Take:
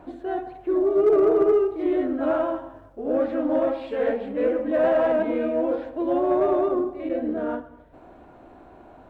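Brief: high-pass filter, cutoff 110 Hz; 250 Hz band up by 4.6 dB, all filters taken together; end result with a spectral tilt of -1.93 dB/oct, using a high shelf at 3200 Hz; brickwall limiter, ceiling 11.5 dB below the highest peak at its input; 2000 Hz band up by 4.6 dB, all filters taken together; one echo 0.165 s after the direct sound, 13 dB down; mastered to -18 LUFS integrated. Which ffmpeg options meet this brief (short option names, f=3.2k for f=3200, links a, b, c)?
-af "highpass=110,equalizer=f=250:t=o:g=6.5,equalizer=f=2k:t=o:g=4,highshelf=f=3.2k:g=6.5,alimiter=limit=-20dB:level=0:latency=1,aecho=1:1:165:0.224,volume=9.5dB"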